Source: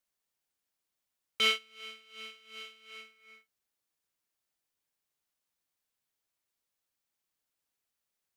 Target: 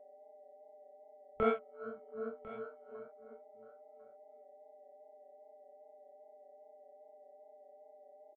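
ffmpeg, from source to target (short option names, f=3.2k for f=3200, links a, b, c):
-filter_complex "[0:a]afftfilt=real='re*gte(hypot(re,im),0.00251)':imag='im*gte(hypot(re,im),0.00251)':win_size=1024:overlap=0.75,lowpass=f=1k:w=0.5412,lowpass=f=1k:w=1.3066,aphaser=in_gain=1:out_gain=1:delay=2:decay=0.36:speed=0.44:type=triangular,lowshelf=f=130:g=6,asplit=2[a][b];[b]acompressor=threshold=-50dB:ratio=16,volume=-1dB[c];[a][c]amix=inputs=2:normalize=0,aeval=exprs='val(0)+0.000794*sin(2*PI*600*n/s)':c=same,afwtdn=0.00158,flanger=delay=19.5:depth=6.1:speed=2.5,asplit=2[d][e];[e]aecho=0:1:1049:0.158[f];[d][f]amix=inputs=2:normalize=0,volume=11.5dB"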